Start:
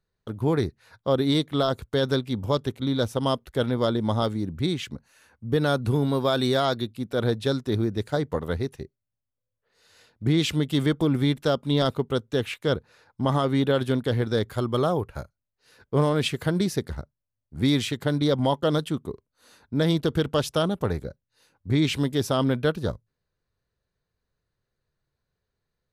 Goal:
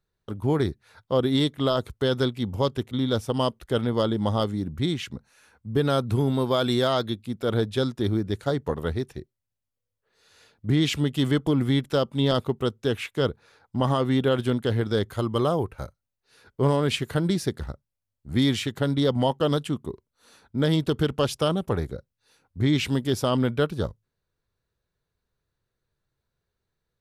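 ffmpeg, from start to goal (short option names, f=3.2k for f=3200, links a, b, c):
-af "asetrate=42336,aresample=44100"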